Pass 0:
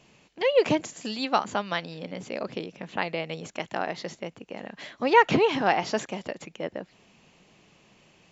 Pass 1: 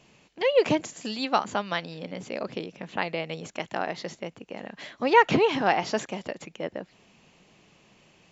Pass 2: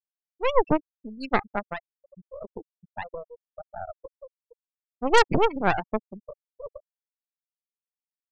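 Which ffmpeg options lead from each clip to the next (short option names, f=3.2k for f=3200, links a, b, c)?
-af anull
-af "afftfilt=real='re*gte(hypot(re,im),0.158)':imag='im*gte(hypot(re,im),0.158)':win_size=1024:overlap=0.75,aeval=exprs='0.596*(cos(1*acos(clip(val(0)/0.596,-1,1)))-cos(1*PI/2))+0.0596*(cos(3*acos(clip(val(0)/0.596,-1,1)))-cos(3*PI/2))+0.133*(cos(6*acos(clip(val(0)/0.596,-1,1)))-cos(6*PI/2))':c=same"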